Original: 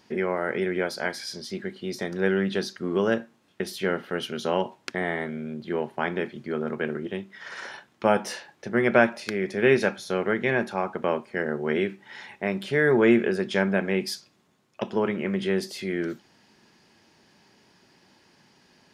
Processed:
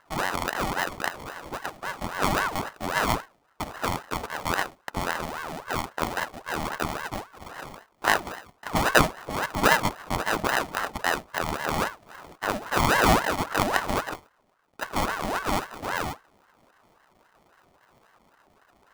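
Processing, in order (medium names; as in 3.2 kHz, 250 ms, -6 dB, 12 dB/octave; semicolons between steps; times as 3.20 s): sample-rate reducer 1.1 kHz, jitter 0%; ring modulator with a swept carrier 870 Hz, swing 55%, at 3.7 Hz; trim +1.5 dB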